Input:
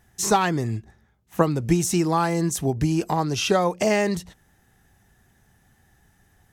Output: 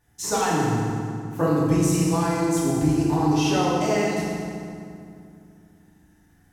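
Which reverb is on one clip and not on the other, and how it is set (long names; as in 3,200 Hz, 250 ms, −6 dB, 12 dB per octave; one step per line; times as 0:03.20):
feedback delay network reverb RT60 2.4 s, low-frequency decay 1.45×, high-frequency decay 0.7×, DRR −8 dB
level −9.5 dB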